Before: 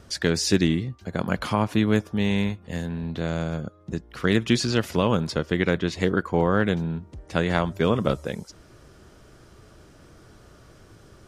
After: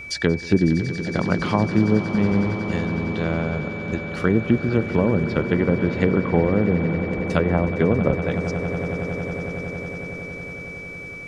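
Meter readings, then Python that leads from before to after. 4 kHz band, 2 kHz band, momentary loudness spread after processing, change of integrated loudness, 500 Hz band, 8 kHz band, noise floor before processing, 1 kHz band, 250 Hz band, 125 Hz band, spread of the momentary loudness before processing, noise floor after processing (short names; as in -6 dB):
-5.5 dB, +3.0 dB, 11 LU, +2.5 dB, +3.5 dB, n/a, -52 dBFS, +0.5 dB, +4.0 dB, +4.5 dB, 10 LU, -35 dBFS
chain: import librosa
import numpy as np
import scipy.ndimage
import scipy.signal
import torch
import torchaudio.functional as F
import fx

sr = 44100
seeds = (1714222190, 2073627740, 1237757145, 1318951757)

y = fx.env_lowpass_down(x, sr, base_hz=590.0, full_db=-17.0)
y = fx.echo_swell(y, sr, ms=92, loudest=8, wet_db=-16.0)
y = y + 10.0 ** (-37.0 / 20.0) * np.sin(2.0 * np.pi * 2300.0 * np.arange(len(y)) / sr)
y = y * 10.0 ** (3.0 / 20.0)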